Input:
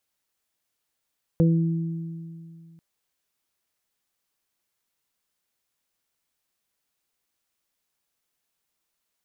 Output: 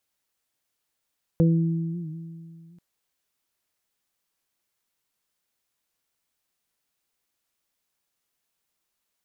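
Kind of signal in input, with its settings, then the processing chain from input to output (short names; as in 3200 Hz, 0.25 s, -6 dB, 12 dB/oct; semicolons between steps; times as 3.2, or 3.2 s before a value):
additive tone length 1.39 s, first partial 165 Hz, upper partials -8/-7 dB, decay 2.48 s, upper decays 1.91/0.37 s, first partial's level -15 dB
record warp 78 rpm, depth 100 cents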